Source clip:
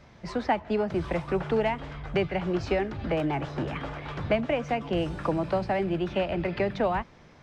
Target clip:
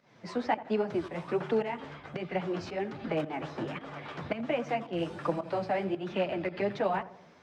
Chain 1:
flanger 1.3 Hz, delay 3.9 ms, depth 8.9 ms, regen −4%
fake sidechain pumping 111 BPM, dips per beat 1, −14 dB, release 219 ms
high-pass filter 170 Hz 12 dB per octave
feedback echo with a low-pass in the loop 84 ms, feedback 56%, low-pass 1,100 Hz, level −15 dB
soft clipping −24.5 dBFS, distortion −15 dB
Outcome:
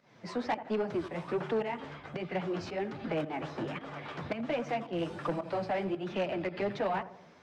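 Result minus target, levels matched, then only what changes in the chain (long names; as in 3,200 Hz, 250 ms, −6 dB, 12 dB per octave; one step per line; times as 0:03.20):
soft clipping: distortion +19 dB
change: soft clipping −12.5 dBFS, distortion −33 dB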